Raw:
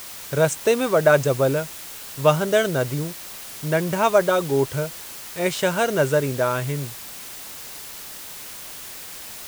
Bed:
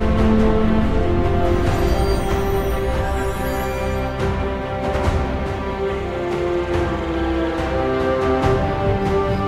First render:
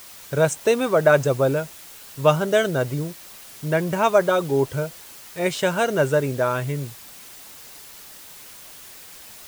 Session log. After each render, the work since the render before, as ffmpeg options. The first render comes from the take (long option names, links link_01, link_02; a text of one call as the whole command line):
ffmpeg -i in.wav -af "afftdn=noise_reduction=6:noise_floor=-37" out.wav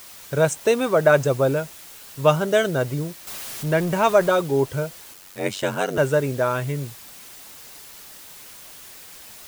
ffmpeg -i in.wav -filter_complex "[0:a]asettb=1/sr,asplit=3[link_01][link_02][link_03];[link_01]atrim=end=3.274[link_04];[link_02]atrim=start=3.27:end=4.41,asetpts=PTS-STARTPTS,afade=type=in:duration=0.004:curve=qsin,afade=type=out:start_time=1.136:duration=0.004:curve=qsin,aeval=exprs='val(0)+0.5*0.0266*sgn(val(0))':channel_layout=same[link_05];[link_03]atrim=start=4.406[link_06];[link_04][link_05]acrossfade=duration=0.004:curve1=hsin:curve2=qsin[link_07];[link_07][link_06]acrossfade=duration=0.004:curve1=qsin:curve2=hsin,asettb=1/sr,asplit=3[link_08][link_09][link_10];[link_08]atrim=end=5.134[link_11];[link_09]atrim=start=5.13:end=5.98,asetpts=PTS-STARTPTS,afade=type=in:duration=0.004:curve=qsin,afade=type=out:start_time=0.846:duration=0.004:curve=qsin,aeval=exprs='val(0)*sin(2*PI*47*n/s)':channel_layout=same[link_12];[link_10]atrim=start=5.976[link_13];[link_11][link_12]acrossfade=duration=0.004:curve1=hsin:curve2=qsin[link_14];[link_14][link_13]acrossfade=duration=0.004:curve1=qsin:curve2=hsin" out.wav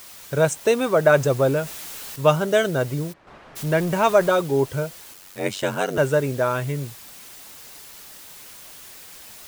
ffmpeg -i in.wav -filter_complex "[0:a]asettb=1/sr,asplit=3[link_01][link_02][link_03];[link_01]atrim=end=1.174[link_04];[link_02]atrim=start=1.17:end=2.16,asetpts=PTS-STARTPTS,afade=type=in:duration=0.004:curve=qsin,afade=type=out:start_time=0.986:duration=0.004:curve=qsin,aeval=exprs='val(0)+0.5*0.0188*sgn(val(0))':channel_layout=same[link_05];[link_03]atrim=start=2.156[link_06];[link_04][link_05]acrossfade=duration=0.004:curve1=hsin:curve2=qsin[link_07];[link_07][link_06]acrossfade=duration=0.004:curve1=qsin:curve2=hsin,asplit=3[link_08][link_09][link_10];[link_08]afade=type=out:start_time=3.12:duration=0.02[link_11];[link_09]lowpass=1300,afade=type=in:start_time=3.12:duration=0.02,afade=type=out:start_time=3.55:duration=0.02[link_12];[link_10]afade=type=in:start_time=3.55:duration=0.02[link_13];[link_11][link_12][link_13]amix=inputs=3:normalize=0" out.wav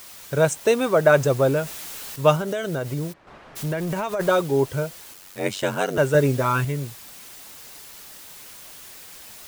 ffmpeg -i in.wav -filter_complex "[0:a]asplit=3[link_01][link_02][link_03];[link_01]afade=type=out:start_time=2.36:duration=0.02[link_04];[link_02]acompressor=threshold=-22dB:ratio=12:attack=3.2:release=140:knee=1:detection=peak,afade=type=in:start_time=2.36:duration=0.02,afade=type=out:start_time=4.19:duration=0.02[link_05];[link_03]afade=type=in:start_time=4.19:duration=0.02[link_06];[link_04][link_05][link_06]amix=inputs=3:normalize=0,asettb=1/sr,asplit=3[link_07][link_08][link_09];[link_07]atrim=end=6.144[link_10];[link_08]atrim=start=6.14:end=6.65,asetpts=PTS-STARTPTS,afade=type=in:duration=0.004:curve=qsin,afade=type=out:start_time=0.506:duration=0.004:curve=qsin,aecho=1:1:7.2:0.89,atrim=end_sample=22491[link_11];[link_09]atrim=start=6.646[link_12];[link_10][link_11]acrossfade=duration=0.004:curve1=hsin:curve2=qsin[link_13];[link_13][link_12]acrossfade=duration=0.004:curve1=qsin:curve2=hsin" out.wav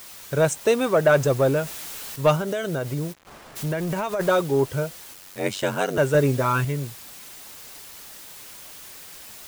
ffmpeg -i in.wav -af "acrusher=bits=7:mix=0:aa=0.000001,asoftclip=type=tanh:threshold=-7.5dB" out.wav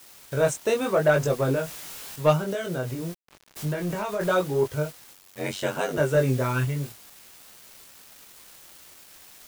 ffmpeg -i in.wav -af "flanger=delay=19.5:depth=4.4:speed=0.85,aeval=exprs='val(0)*gte(abs(val(0)),0.00891)':channel_layout=same" out.wav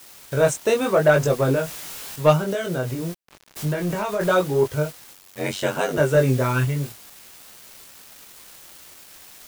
ffmpeg -i in.wav -af "volume=4dB" out.wav